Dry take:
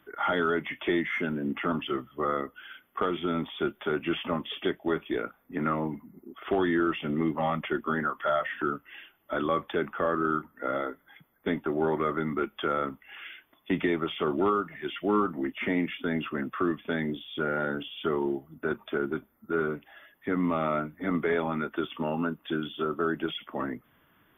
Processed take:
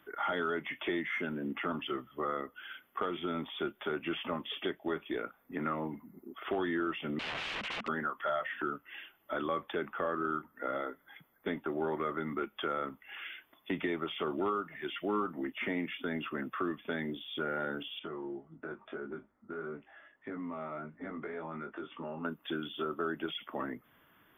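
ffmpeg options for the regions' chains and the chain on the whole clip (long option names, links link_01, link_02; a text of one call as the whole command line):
ffmpeg -i in.wav -filter_complex "[0:a]asettb=1/sr,asplit=3[link_01][link_02][link_03];[link_01]atrim=end=7.194[link_04];[link_02]atrim=start=7.19:end=7.88,asetpts=PTS-STARTPTS,afade=type=in:duration=0.004:curve=qsin,afade=type=out:start_time=0.686:duration=0.004:curve=qsin,equalizer=frequency=210:width=3.5:gain=13,aeval=exprs='(mod(35.5*val(0)+1,2)-1)/35.5':channel_layout=same,lowpass=frequency=2800:width_type=q:width=2.2[link_05];[link_03]atrim=start=7.876[link_06];[link_04][link_05]acrossfade=duration=0.004:curve1=hsin:curve2=qsin[link_07];[link_07][link_06]acrossfade=duration=0.004:curve1=qsin:curve2=hsin,asettb=1/sr,asplit=3[link_08][link_09][link_10];[link_08]atrim=end=17.994[link_11];[link_09]atrim=start=17.99:end=22.25,asetpts=PTS-STARTPTS,afade=type=in:duration=0.004:curve=qsin,afade=type=out:start_time=4.256:duration=0.004:curve=qsin,lowpass=2100,acompressor=threshold=-31dB:ratio=4:attack=3.2:release=140:knee=1:detection=peak,flanger=delay=18:depth=2.5:speed=1.7[link_12];[link_10]atrim=start=22.246[link_13];[link_11][link_12]acrossfade=duration=0.004:curve1=hsin:curve2=qsin[link_14];[link_14][link_13]acrossfade=duration=0.004:curve1=qsin:curve2=hsin,lowshelf=frequency=230:gain=-5.5,acompressor=threshold=-40dB:ratio=1.5" out.wav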